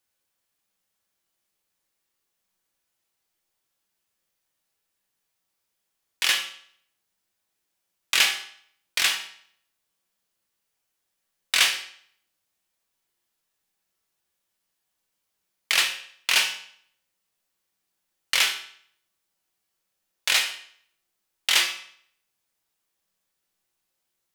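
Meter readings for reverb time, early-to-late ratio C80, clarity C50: 0.60 s, 12.5 dB, 9.0 dB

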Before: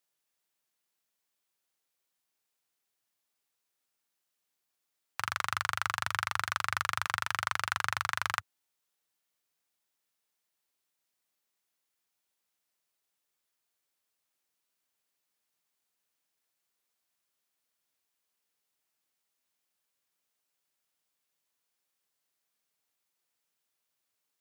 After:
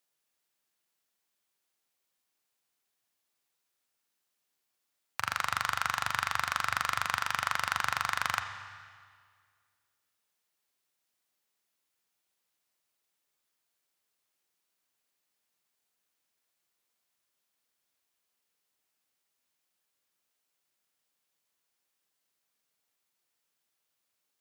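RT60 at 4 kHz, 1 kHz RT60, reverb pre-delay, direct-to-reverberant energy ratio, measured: 1.8 s, 1.9 s, 29 ms, 7.0 dB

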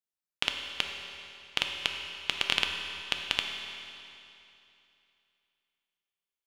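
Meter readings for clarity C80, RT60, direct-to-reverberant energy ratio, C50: 5.0 dB, 2.8 s, 2.5 dB, 4.0 dB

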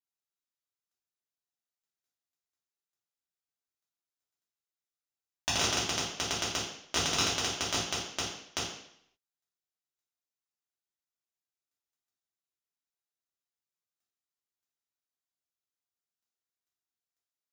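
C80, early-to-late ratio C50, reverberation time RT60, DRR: 7.0 dB, 3.0 dB, 0.70 s, -7.0 dB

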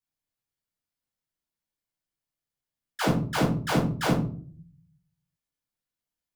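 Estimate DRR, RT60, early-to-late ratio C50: -6.5 dB, 0.50 s, 6.5 dB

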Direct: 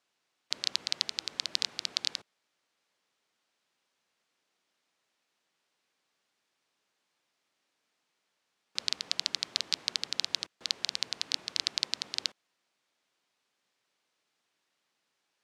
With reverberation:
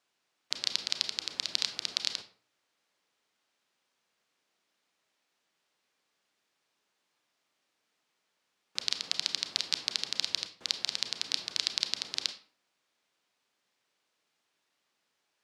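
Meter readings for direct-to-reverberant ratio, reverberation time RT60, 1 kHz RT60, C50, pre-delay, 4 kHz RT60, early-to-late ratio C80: 8.5 dB, 0.45 s, 0.45 s, 12.0 dB, 28 ms, 0.30 s, 16.5 dB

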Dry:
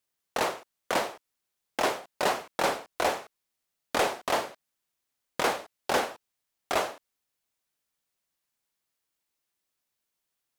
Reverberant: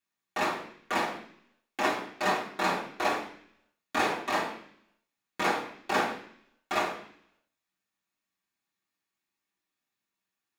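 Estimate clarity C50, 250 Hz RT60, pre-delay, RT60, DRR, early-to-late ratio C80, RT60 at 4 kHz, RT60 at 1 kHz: 8.5 dB, 0.80 s, 3 ms, 0.60 s, -7.0 dB, 11.0 dB, 0.80 s, 0.60 s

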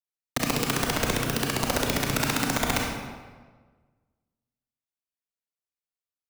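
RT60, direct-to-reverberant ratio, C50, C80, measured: 1.5 s, -0.5 dB, 1.5 dB, 4.0 dB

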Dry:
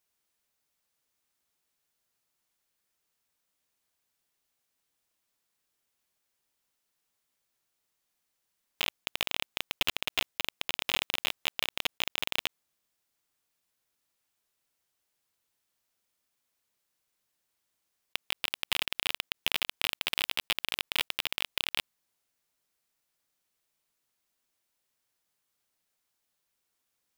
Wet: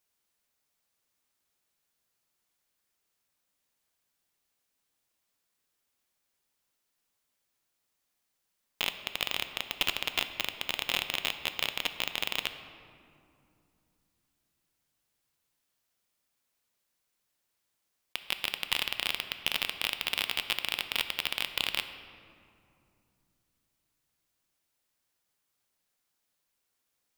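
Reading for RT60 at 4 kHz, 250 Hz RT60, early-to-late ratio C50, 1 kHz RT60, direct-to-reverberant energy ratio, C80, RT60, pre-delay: 1.3 s, 3.8 s, 10.0 dB, 2.5 s, 8.5 dB, 11.0 dB, 2.6 s, 4 ms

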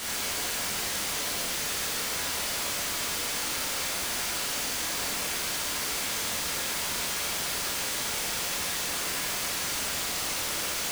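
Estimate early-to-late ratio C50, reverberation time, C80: 0.5 dB, 0.90 s, 4.0 dB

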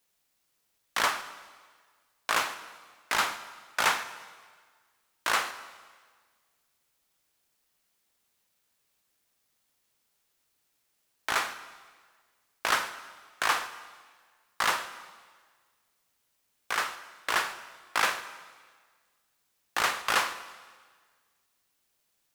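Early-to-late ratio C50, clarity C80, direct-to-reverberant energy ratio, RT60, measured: 12.5 dB, 13.5 dB, 11.0 dB, 1.6 s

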